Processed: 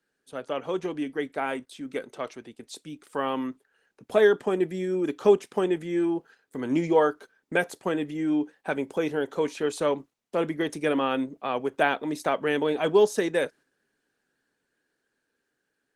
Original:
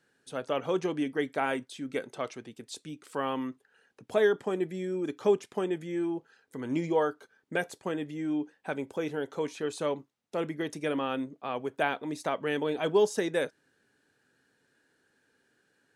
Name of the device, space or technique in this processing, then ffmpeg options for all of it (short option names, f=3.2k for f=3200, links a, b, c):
video call: -af "highpass=150,dynaudnorm=f=700:g=9:m=6dB,agate=range=-6dB:threshold=-48dB:ratio=16:detection=peak" -ar 48000 -c:a libopus -b:a 20k